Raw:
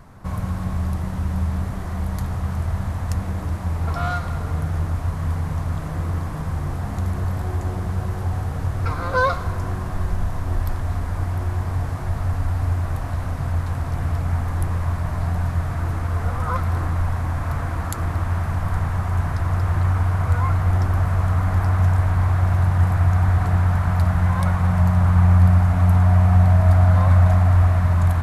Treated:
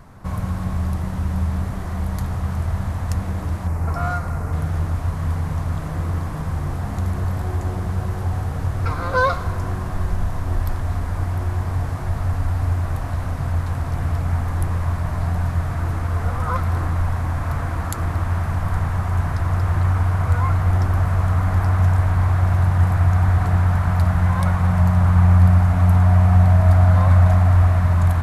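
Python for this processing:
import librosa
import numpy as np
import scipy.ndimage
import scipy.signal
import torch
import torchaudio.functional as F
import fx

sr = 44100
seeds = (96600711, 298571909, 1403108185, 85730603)

y = fx.peak_eq(x, sr, hz=3500.0, db=-11.0, octaves=0.77, at=(3.67, 4.53))
y = F.gain(torch.from_numpy(y), 1.0).numpy()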